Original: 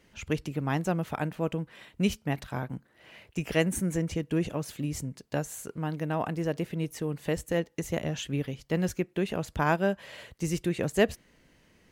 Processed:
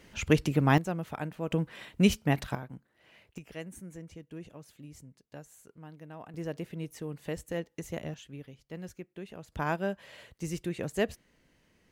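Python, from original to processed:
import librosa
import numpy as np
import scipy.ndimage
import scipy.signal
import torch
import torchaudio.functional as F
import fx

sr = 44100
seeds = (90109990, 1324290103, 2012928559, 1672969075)

y = fx.gain(x, sr, db=fx.steps((0.0, 6.0), (0.78, -5.0), (1.51, 3.5), (2.55, -8.0), (3.38, -16.0), (6.34, -6.5), (8.14, -14.0), (9.52, -5.5)))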